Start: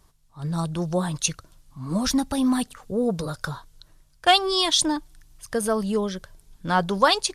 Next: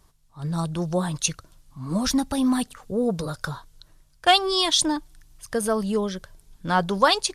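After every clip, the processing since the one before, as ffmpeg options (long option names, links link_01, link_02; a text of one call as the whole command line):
ffmpeg -i in.wav -af anull out.wav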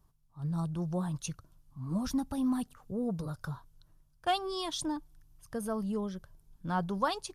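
ffmpeg -i in.wav -af "equalizer=frequency=125:width_type=o:width=1:gain=4,equalizer=frequency=500:width_type=o:width=1:gain=-5,equalizer=frequency=2000:width_type=o:width=1:gain=-8,equalizer=frequency=4000:width_type=o:width=1:gain=-7,equalizer=frequency=8000:width_type=o:width=1:gain=-8,volume=-8dB" out.wav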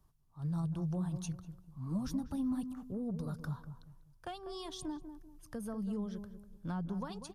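ffmpeg -i in.wav -filter_complex "[0:a]acrossover=split=260[link_01][link_02];[link_02]acompressor=threshold=-43dB:ratio=4[link_03];[link_01][link_03]amix=inputs=2:normalize=0,asplit=2[link_04][link_05];[link_05]adelay=195,lowpass=frequency=930:poles=1,volume=-8.5dB,asplit=2[link_06][link_07];[link_07]adelay=195,lowpass=frequency=930:poles=1,volume=0.35,asplit=2[link_08][link_09];[link_09]adelay=195,lowpass=frequency=930:poles=1,volume=0.35,asplit=2[link_10][link_11];[link_11]adelay=195,lowpass=frequency=930:poles=1,volume=0.35[link_12];[link_06][link_08][link_10][link_12]amix=inputs=4:normalize=0[link_13];[link_04][link_13]amix=inputs=2:normalize=0,volume=-2dB" out.wav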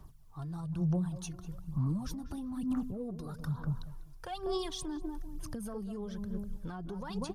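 ffmpeg -i in.wav -filter_complex "[0:a]asplit=2[link_01][link_02];[link_02]acompressor=threshold=-42dB:ratio=6,volume=1dB[link_03];[link_01][link_03]amix=inputs=2:normalize=0,alimiter=level_in=10.5dB:limit=-24dB:level=0:latency=1:release=256,volume=-10.5dB,aphaser=in_gain=1:out_gain=1:delay=2.9:decay=0.57:speed=1.1:type=sinusoidal,volume=3dB" out.wav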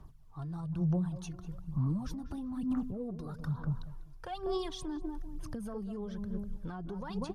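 ffmpeg -i in.wav -af "aemphasis=mode=reproduction:type=cd" out.wav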